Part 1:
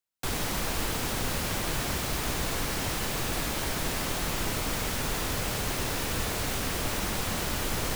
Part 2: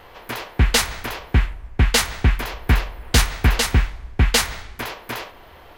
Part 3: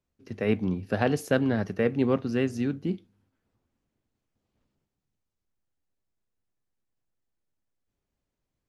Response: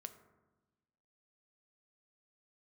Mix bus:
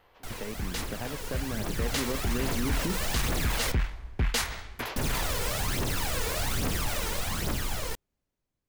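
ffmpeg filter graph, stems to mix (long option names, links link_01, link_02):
-filter_complex "[0:a]aphaser=in_gain=1:out_gain=1:delay=2.3:decay=0.61:speed=1.2:type=triangular,volume=-13dB,asplit=3[link_01][link_02][link_03];[link_01]atrim=end=3.72,asetpts=PTS-STARTPTS,afade=type=out:start_time=3.716:duration=0.004:curve=hsin[link_04];[link_02]atrim=start=3.72:end=4.96,asetpts=PTS-STARTPTS,volume=0[link_05];[link_03]atrim=start=4.96,asetpts=PTS-STARTPTS,afade=type=in:duration=0.004:curve=hsin[link_06];[link_04][link_05][link_06]concat=n=3:v=0:a=1[link_07];[1:a]aeval=exprs='(tanh(4.47*val(0)+0.3)-tanh(0.3))/4.47':channel_layout=same,volume=-16.5dB[link_08];[2:a]acompressor=threshold=-31dB:ratio=6,volume=-5dB[link_09];[link_07][link_08][link_09]amix=inputs=3:normalize=0,dynaudnorm=framelen=620:gausssize=7:maxgain=11.5dB,alimiter=limit=-19.5dB:level=0:latency=1:release=11"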